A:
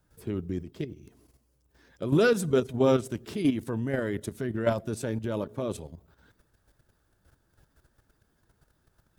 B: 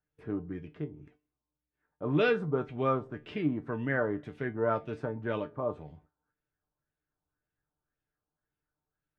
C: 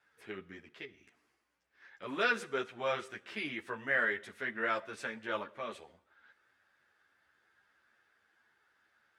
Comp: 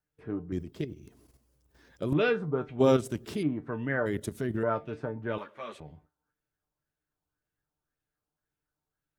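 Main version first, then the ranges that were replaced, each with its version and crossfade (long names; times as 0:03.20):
B
0:00.52–0:02.13: punch in from A
0:02.79–0:03.43: punch in from A
0:04.06–0:04.63: punch in from A
0:05.38–0:05.80: punch in from C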